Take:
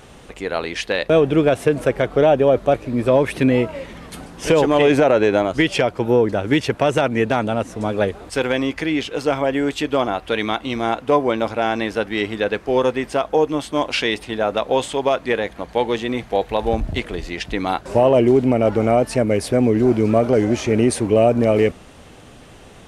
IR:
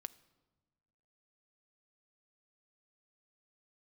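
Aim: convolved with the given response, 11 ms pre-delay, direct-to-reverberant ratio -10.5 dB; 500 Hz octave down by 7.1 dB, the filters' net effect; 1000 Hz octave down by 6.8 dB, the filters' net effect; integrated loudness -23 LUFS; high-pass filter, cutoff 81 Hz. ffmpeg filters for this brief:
-filter_complex "[0:a]highpass=81,equalizer=f=500:t=o:g=-7,equalizer=f=1k:t=o:g=-6.5,asplit=2[a][b];[1:a]atrim=start_sample=2205,adelay=11[c];[b][c]afir=irnorm=-1:irlink=0,volume=15dB[d];[a][d]amix=inputs=2:normalize=0,volume=-10.5dB"

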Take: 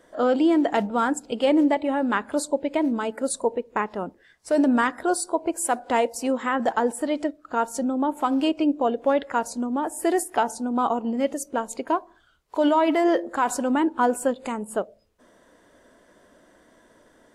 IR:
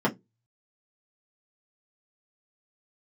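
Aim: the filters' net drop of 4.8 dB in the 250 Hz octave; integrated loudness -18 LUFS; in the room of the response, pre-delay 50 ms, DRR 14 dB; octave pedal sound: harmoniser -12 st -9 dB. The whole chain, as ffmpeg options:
-filter_complex "[0:a]equalizer=f=250:t=o:g=-6,asplit=2[a][b];[1:a]atrim=start_sample=2205,adelay=50[c];[b][c]afir=irnorm=-1:irlink=0,volume=-27dB[d];[a][d]amix=inputs=2:normalize=0,asplit=2[e][f];[f]asetrate=22050,aresample=44100,atempo=2,volume=-9dB[g];[e][g]amix=inputs=2:normalize=0,volume=7dB"

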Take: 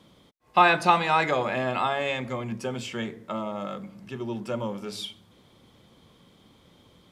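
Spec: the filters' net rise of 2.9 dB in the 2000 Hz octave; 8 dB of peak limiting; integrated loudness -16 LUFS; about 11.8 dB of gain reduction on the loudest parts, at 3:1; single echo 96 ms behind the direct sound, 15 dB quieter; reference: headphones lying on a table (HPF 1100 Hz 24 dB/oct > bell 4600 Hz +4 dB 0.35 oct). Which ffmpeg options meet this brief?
-af "equalizer=f=2k:t=o:g=4,acompressor=threshold=-29dB:ratio=3,alimiter=limit=-22.5dB:level=0:latency=1,highpass=f=1.1k:w=0.5412,highpass=f=1.1k:w=1.3066,equalizer=f=4.6k:t=o:w=0.35:g=4,aecho=1:1:96:0.178,volume=21.5dB"

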